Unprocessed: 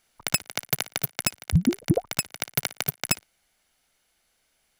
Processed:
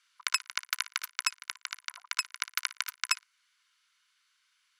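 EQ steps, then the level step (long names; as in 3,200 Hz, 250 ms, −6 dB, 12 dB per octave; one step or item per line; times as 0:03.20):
dynamic equaliser 3,400 Hz, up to −5 dB, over −48 dBFS, Q 2.3
Chebyshev high-pass with heavy ripple 990 Hz, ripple 3 dB
high-frequency loss of the air 61 metres
+3.0 dB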